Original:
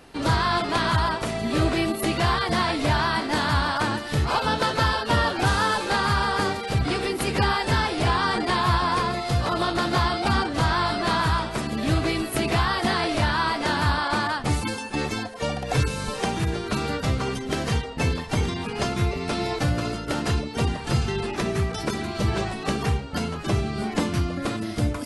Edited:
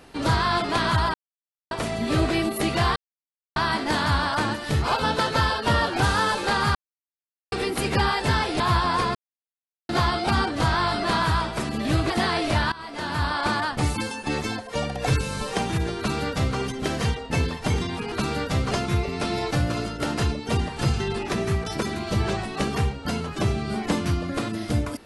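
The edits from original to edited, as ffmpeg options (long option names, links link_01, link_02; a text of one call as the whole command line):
ffmpeg -i in.wav -filter_complex "[0:a]asplit=13[link_01][link_02][link_03][link_04][link_05][link_06][link_07][link_08][link_09][link_10][link_11][link_12][link_13];[link_01]atrim=end=1.14,asetpts=PTS-STARTPTS,afade=type=out:start_time=1.136:duration=0.004:curve=hsin,apad=pad_dur=0.57[link_14];[link_02]atrim=start=1.14:end=2.39,asetpts=PTS-STARTPTS,afade=type=in:duration=0.004:curve=hsin,afade=type=out:start_time=1.246:duration=0.004:curve=hsin[link_15];[link_03]atrim=start=2.39:end=2.99,asetpts=PTS-STARTPTS,volume=0[link_16];[link_04]atrim=start=2.99:end=6.18,asetpts=PTS-STARTPTS,afade=type=in:duration=0.004:curve=hsin,afade=type=out:start_time=3.186:duration=0.004:curve=hsin[link_17];[link_05]atrim=start=6.18:end=6.95,asetpts=PTS-STARTPTS,volume=0[link_18];[link_06]atrim=start=6.95:end=8.032,asetpts=PTS-STARTPTS,afade=type=in:duration=0.004:curve=hsin[link_19];[link_07]atrim=start=8.578:end=9.13,asetpts=PTS-STARTPTS,afade=type=out:start_time=0.548:duration=0.004:curve=hsin[link_20];[link_08]atrim=start=9.13:end=9.87,asetpts=PTS-STARTPTS,volume=0[link_21];[link_09]atrim=start=9.87:end=12.082,asetpts=PTS-STARTPTS,afade=type=in:duration=0.004:curve=hsin[link_22];[link_10]atrim=start=12.768:end=13.39,asetpts=PTS-STARTPTS,afade=type=out:start_time=0.618:duration=0.004:curve=hsin:silence=0.0944061[link_23];[link_11]atrim=start=13.39:end=18.792,asetpts=PTS-STARTPTS,afade=type=in:duration=0.72:silence=0.0944061[link_24];[link_12]atrim=start=16.648:end=17.242[link_25];[link_13]atrim=start=18.788[link_26];[link_14][link_15][link_16][link_17][link_18][link_19]concat=n=6:v=0:a=1[link_27];[link_20][link_21][link_22]concat=n=3:v=0:a=1[link_28];[link_27][link_28]acrossfade=duration=0.004:curve1=hsin:curve2=hsin[link_29];[link_23][link_24]concat=n=2:v=0:a=1[link_30];[link_29][link_30]acrossfade=duration=0.004:curve1=hsin:curve2=hsin[link_31];[link_31][link_25]acrossfade=duration=0.004:curve1=hsin:curve2=hsin[link_32];[link_32][link_26]acrossfade=duration=0.004:curve1=hsin:curve2=hsin" out.wav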